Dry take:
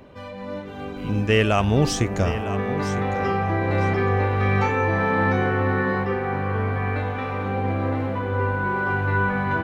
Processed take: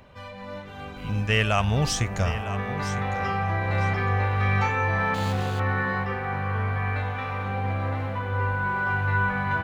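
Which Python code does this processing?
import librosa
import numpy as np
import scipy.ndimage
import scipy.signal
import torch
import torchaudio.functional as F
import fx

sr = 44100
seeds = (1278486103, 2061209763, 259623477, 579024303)

y = fx.median_filter(x, sr, points=25, at=(5.14, 5.6))
y = fx.peak_eq(y, sr, hz=330.0, db=-13.0, octaves=1.3)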